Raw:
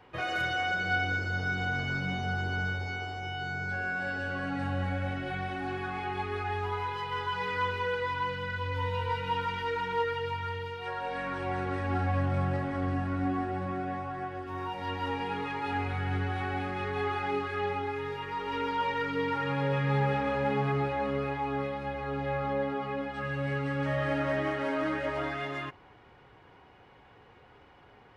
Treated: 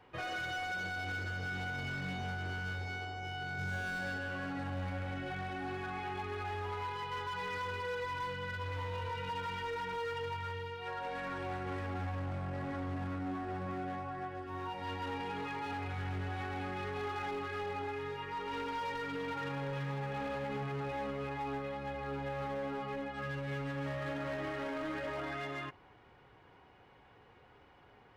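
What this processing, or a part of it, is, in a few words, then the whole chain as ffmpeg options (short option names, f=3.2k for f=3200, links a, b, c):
limiter into clipper: -filter_complex "[0:a]alimiter=level_in=0.5dB:limit=-24dB:level=0:latency=1:release=47,volume=-0.5dB,asoftclip=type=hard:threshold=-30dB,asettb=1/sr,asplit=3[a][b][c];[a]atrim=end=3.584[d];[b]atrim=start=3.58:end=4.18,asetpts=PTS-STARTPTS,afade=t=in:d=0.004:c=qsin,afade=t=out:st=0.596:d=0.004:c=qsin,bass=f=250:g=5,treble=f=4k:g=6[e];[c]atrim=start=4.176[f];[d][e]acrossfade=d=0.004:c1=hsin:c2=qsin[g];[g][f]acrossfade=d=0.004:c1=qsin:c2=hsin,volume=-4.5dB"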